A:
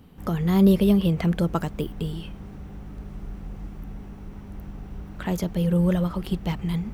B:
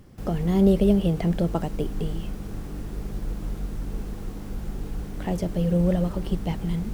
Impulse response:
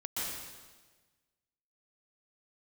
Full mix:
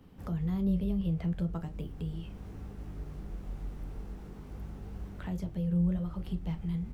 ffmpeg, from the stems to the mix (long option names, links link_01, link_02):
-filter_complex "[0:a]flanger=delay=9.6:depth=1.7:regen=76:speed=1.8:shape=sinusoidal,volume=-1.5dB[link_01];[1:a]flanger=delay=17.5:depth=8:speed=0.4,adelay=12,volume=-8dB[link_02];[link_01][link_02]amix=inputs=2:normalize=0,highshelf=frequency=4800:gain=-5,acrossover=split=160[link_03][link_04];[link_04]acompressor=threshold=-49dB:ratio=2[link_05];[link_03][link_05]amix=inputs=2:normalize=0"